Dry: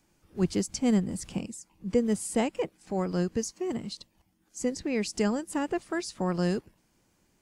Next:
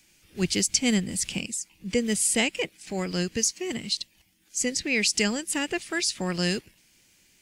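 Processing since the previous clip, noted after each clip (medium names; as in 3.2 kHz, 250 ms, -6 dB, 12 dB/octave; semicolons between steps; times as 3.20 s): resonant high shelf 1.6 kHz +12 dB, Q 1.5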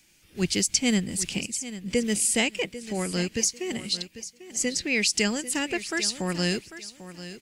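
feedback delay 795 ms, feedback 23%, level -14 dB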